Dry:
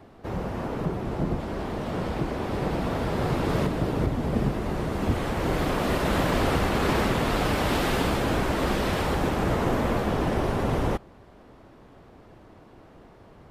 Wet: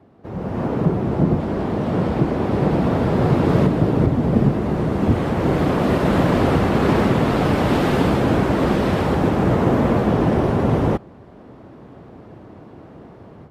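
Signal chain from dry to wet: level rider gain up to 11.5 dB; high-pass 120 Hz 12 dB/octave; tilt EQ -2.5 dB/octave; trim -5 dB

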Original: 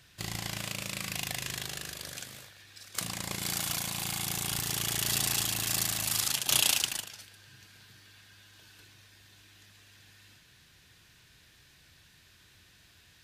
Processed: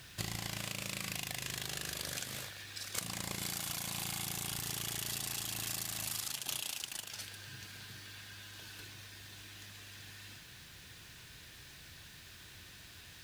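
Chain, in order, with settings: compression 16:1, threshold -41 dBFS, peak gain reduction 21.5 dB; bit crusher 11-bit; trim +6 dB

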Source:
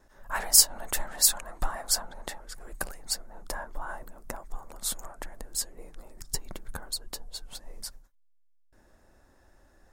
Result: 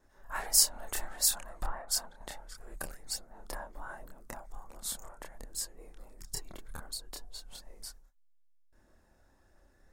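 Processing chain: chorus voices 2, 0.73 Hz, delay 28 ms, depth 1.5 ms; 1.66–2.21 s: three bands expanded up and down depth 70%; trim -2.5 dB

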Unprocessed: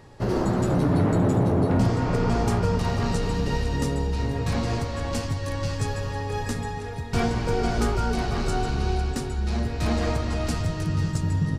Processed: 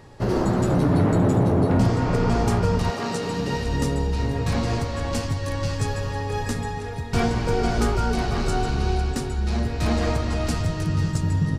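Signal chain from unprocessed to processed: 2.90–3.65 s: high-pass 330 Hz -> 87 Hz 12 dB/octave; trim +2 dB

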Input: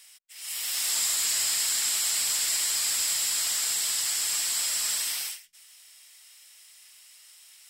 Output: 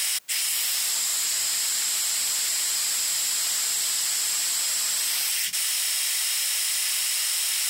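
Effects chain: high-pass 97 Hz 12 dB/octave; level flattener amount 100%

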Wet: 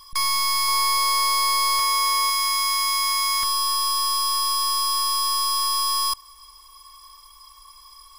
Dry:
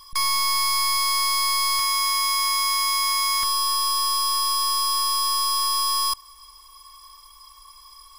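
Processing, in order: 0.68–2.30 s: peaking EQ 620 Hz +10 dB 1.1 oct

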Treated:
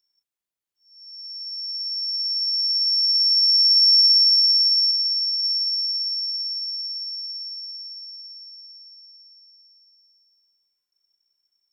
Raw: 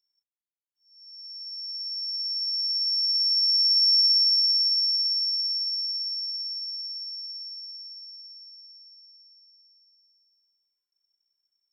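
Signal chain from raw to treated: 4.91–5.43 s: treble shelf 9.2 kHz -9.5 dB; trim +5 dB

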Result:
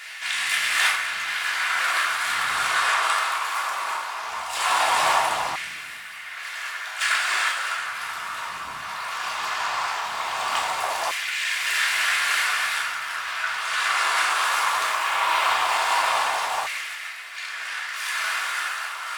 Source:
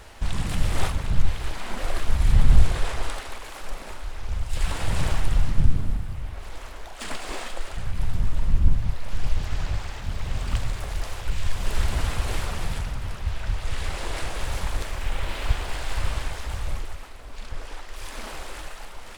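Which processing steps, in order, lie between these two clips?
simulated room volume 530 m³, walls furnished, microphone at 3.2 m; LFO high-pass saw down 0.18 Hz 820–2000 Hz; trim +6 dB

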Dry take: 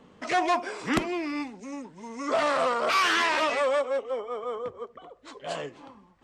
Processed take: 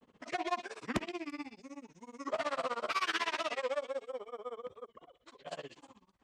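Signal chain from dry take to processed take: repeats whose band climbs or falls 108 ms, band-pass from 3.2 kHz, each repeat 0.7 oct, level -4 dB; granulator 67 ms, grains 16 per s, spray 11 ms, pitch spread up and down by 0 st; warped record 45 rpm, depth 100 cents; trim -7 dB

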